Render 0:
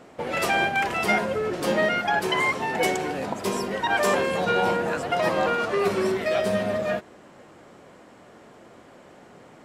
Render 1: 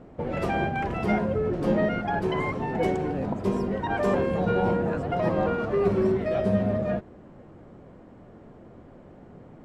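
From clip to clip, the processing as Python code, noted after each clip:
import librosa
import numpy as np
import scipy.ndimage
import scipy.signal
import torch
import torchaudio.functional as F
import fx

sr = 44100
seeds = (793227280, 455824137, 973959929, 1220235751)

y = fx.tilt_eq(x, sr, slope=-4.5)
y = y * 10.0 ** (-5.5 / 20.0)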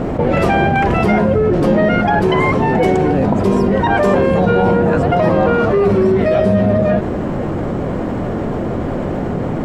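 y = fx.env_flatten(x, sr, amount_pct=70)
y = y * 10.0 ** (8.0 / 20.0)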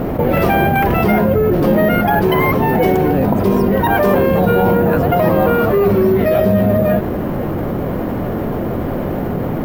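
y = np.repeat(scipy.signal.resample_poly(x, 1, 3), 3)[:len(x)]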